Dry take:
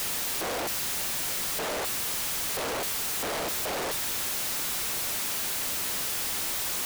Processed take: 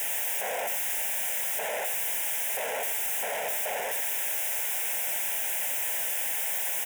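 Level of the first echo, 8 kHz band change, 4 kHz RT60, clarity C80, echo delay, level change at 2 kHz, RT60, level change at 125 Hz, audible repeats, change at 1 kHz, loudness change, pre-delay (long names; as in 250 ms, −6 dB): −9.0 dB, −0.5 dB, no reverb audible, no reverb audible, 89 ms, +1.5 dB, no reverb audible, below −15 dB, 1, −1.0 dB, +0.5 dB, no reverb audible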